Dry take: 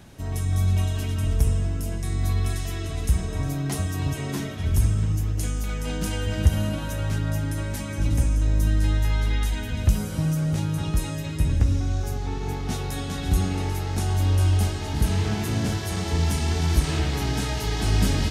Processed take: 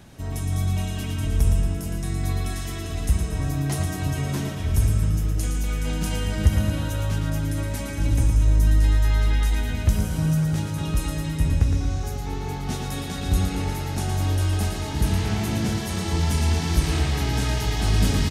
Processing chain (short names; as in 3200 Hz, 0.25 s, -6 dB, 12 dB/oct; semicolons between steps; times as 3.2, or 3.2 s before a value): feedback echo 0.114 s, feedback 55%, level -6.5 dB